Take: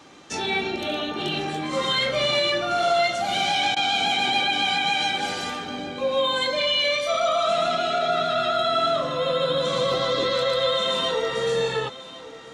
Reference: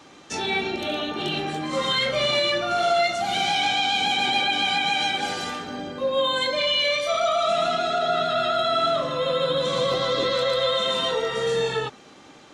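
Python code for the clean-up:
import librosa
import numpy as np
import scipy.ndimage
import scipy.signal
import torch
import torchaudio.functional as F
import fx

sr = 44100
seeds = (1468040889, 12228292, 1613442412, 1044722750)

y = fx.fix_interpolate(x, sr, at_s=(3.75,), length_ms=13.0)
y = fx.fix_echo_inverse(y, sr, delay_ms=1098, level_db=-16.5)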